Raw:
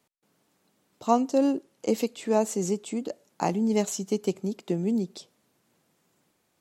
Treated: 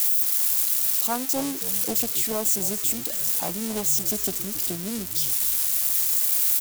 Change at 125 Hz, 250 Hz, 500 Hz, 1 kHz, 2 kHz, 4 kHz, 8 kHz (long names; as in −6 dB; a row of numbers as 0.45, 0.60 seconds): −3.5, −6.0, −6.5, −4.5, +6.0, +12.0, +15.5 decibels